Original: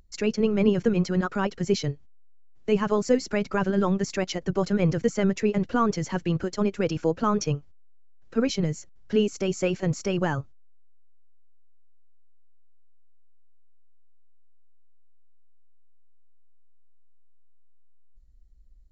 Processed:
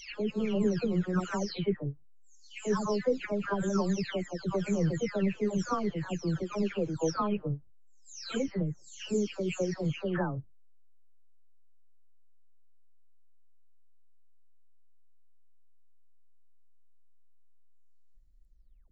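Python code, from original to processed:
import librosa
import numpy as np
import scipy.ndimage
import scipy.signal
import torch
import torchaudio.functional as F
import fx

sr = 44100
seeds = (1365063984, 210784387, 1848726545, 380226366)

y = fx.spec_delay(x, sr, highs='early', ms=466)
y = y * 10.0 ** (-5.0 / 20.0)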